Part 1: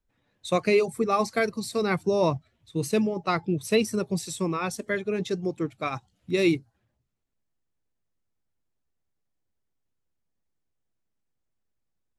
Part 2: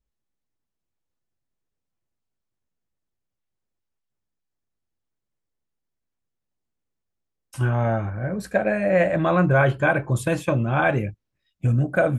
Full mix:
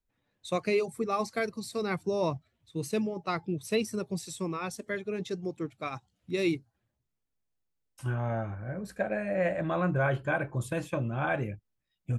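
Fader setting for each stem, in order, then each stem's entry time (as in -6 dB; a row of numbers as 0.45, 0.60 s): -6.0, -9.5 dB; 0.00, 0.45 s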